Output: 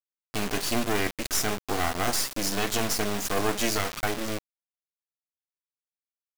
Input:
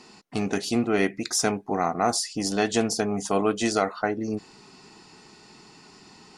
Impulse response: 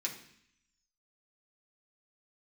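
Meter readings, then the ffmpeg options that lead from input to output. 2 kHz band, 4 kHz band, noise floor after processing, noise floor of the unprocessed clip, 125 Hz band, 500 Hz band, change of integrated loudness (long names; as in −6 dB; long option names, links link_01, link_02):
+1.0 dB, +1.5 dB, below −85 dBFS, −52 dBFS, −1.0 dB, −5.0 dB, −2.0 dB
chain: -af "acrusher=bits=3:dc=4:mix=0:aa=0.000001,tiltshelf=frequency=970:gain=-3.5,aeval=exprs='max(val(0),0)':channel_layout=same,alimiter=limit=-16dB:level=0:latency=1:release=11,volume=4dB"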